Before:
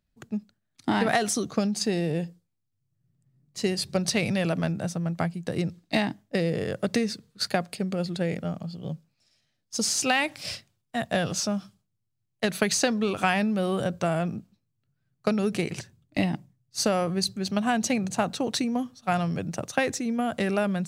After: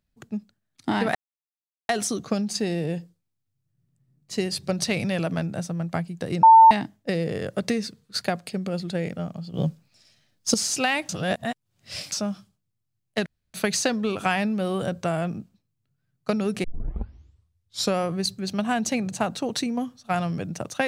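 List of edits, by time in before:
1.15 insert silence 0.74 s
5.69–5.97 bleep 897 Hz -7.5 dBFS
8.8–9.8 gain +9 dB
10.35–11.38 reverse
12.52 insert room tone 0.28 s
15.62 tape start 1.35 s

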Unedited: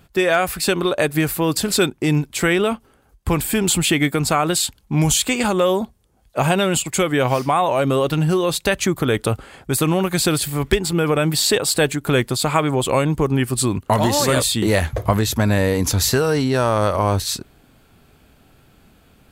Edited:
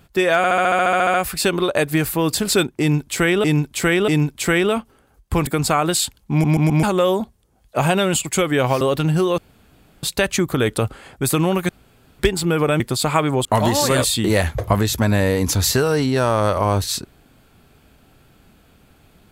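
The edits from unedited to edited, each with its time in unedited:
0.37 stutter 0.07 s, 12 plays
2.03–2.67 loop, 3 plays
3.42–4.08 cut
4.92 stutter in place 0.13 s, 4 plays
7.42–7.94 cut
8.51 insert room tone 0.65 s
10.17–10.67 room tone
11.28–12.2 cut
12.85–13.83 cut

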